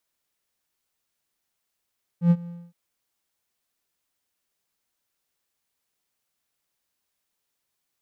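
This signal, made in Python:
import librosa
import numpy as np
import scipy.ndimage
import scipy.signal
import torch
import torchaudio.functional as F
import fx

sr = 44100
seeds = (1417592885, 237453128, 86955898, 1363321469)

y = fx.adsr_tone(sr, wave='triangle', hz=172.0, attack_ms=97.0, decay_ms=51.0, sustain_db=-21.5, held_s=0.27, release_ms=247.0, level_db=-10.0)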